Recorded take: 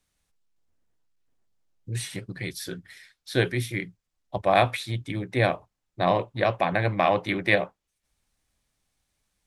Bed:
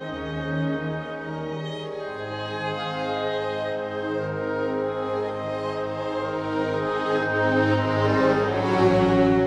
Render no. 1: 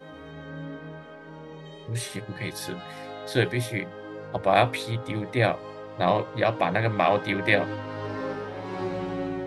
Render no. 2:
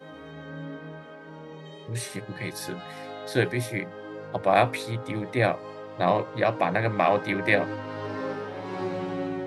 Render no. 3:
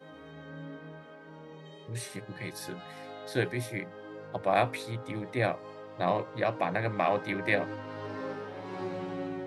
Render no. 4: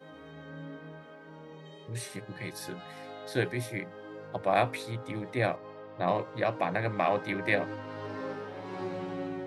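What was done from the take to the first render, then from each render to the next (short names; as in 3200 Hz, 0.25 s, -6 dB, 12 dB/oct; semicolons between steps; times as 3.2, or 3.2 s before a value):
add bed -12 dB
HPF 100 Hz; dynamic EQ 3300 Hz, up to -6 dB, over -49 dBFS, Q 3.3
gain -5.5 dB
5.56–6.08 air absorption 170 m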